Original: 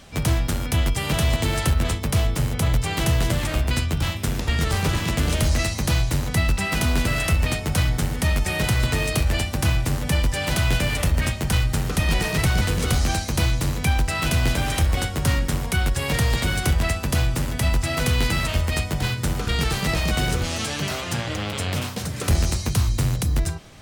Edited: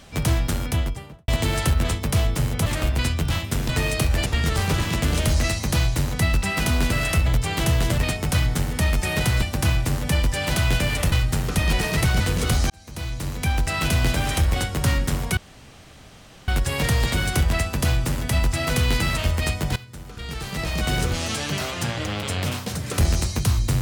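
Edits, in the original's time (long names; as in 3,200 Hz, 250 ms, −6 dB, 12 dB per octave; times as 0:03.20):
0:00.58–0:01.28: fade out and dull
0:02.66–0:03.38: move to 0:07.41
0:08.85–0:09.42: move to 0:04.41
0:11.12–0:11.53: remove
0:13.11–0:14.13: fade in
0:15.78: splice in room tone 1.11 s
0:19.06–0:20.27: fade in quadratic, from −16.5 dB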